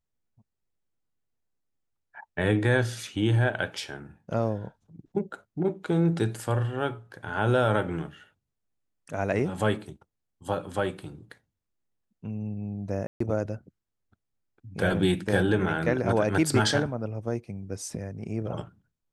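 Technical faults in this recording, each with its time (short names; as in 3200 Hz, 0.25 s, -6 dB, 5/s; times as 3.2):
13.07–13.2 gap 0.134 s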